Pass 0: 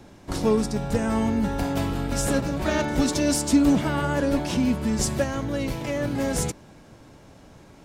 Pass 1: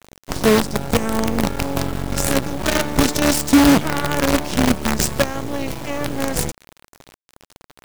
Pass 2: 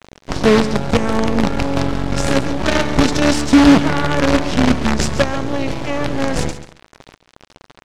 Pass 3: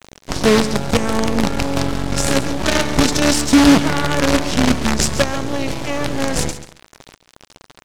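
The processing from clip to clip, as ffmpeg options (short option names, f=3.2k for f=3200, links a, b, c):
-af "acrusher=bits=4:dc=4:mix=0:aa=0.000001,volume=5.5dB"
-af "acontrast=39,lowpass=5.3k,aecho=1:1:137|274:0.237|0.0403,volume=-1dB"
-af "aemphasis=mode=production:type=50kf,volume=-1.5dB"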